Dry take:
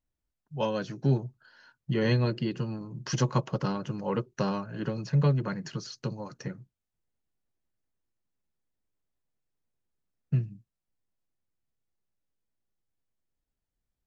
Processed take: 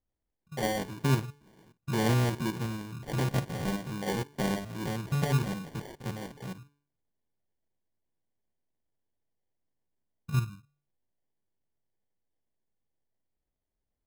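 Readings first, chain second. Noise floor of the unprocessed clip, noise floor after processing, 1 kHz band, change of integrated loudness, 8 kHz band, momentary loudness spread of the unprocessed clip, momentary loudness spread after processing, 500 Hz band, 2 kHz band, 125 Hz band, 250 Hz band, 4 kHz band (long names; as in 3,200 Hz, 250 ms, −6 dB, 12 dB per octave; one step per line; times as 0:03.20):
below −85 dBFS, −85 dBFS, +0.5 dB, −1.5 dB, can't be measured, 14 LU, 14 LU, −3.0 dB, +2.5 dB, −2.0 dB, −1.5 dB, +1.0 dB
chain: spectrum averaged block by block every 50 ms
hum removal 144 Hz, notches 3
decimation without filtering 34×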